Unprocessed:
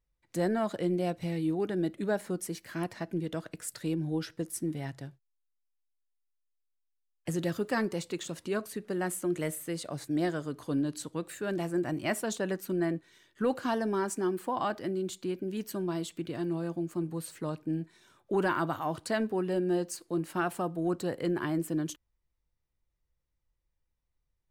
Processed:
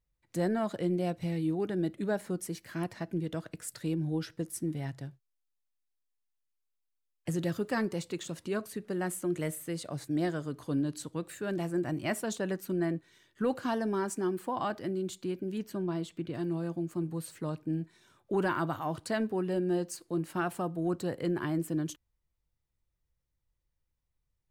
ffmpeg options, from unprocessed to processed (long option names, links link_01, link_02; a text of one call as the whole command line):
ffmpeg -i in.wav -filter_complex "[0:a]asettb=1/sr,asplit=3[link_01][link_02][link_03];[link_01]atrim=end=15.584[link_04];[link_02]atrim=start=15.58:end=16.34,asetpts=PTS-STARTPTS,afade=type=in:duration=0.004:curve=qsin,afade=type=out:start_time=0.756:duration=0.004:curve=qsin,aemphasis=mode=reproduction:type=cd[link_05];[link_03]atrim=start=16.336[link_06];[link_04][link_05]acrossfade=duration=0.004:curve1=hsin:curve2=qsin[link_07];[link_07][link_06]acrossfade=duration=0.004:curve1=qsin:curve2=hsin,equalizer=frequency=110:width_type=o:width=1.7:gain=4.5,volume=-2dB" out.wav